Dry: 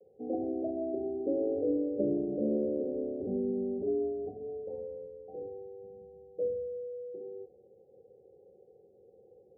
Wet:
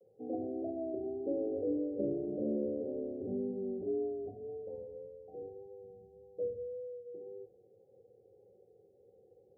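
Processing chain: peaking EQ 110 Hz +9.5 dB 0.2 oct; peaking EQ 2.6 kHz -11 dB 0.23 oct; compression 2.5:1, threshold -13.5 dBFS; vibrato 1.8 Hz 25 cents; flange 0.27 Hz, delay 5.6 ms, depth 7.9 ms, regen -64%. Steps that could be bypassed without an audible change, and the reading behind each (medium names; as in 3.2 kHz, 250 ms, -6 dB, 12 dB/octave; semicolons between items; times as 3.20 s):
peaking EQ 2.6 kHz: input has nothing above 810 Hz; compression, threshold -13.5 dBFS: peak at its input -18.5 dBFS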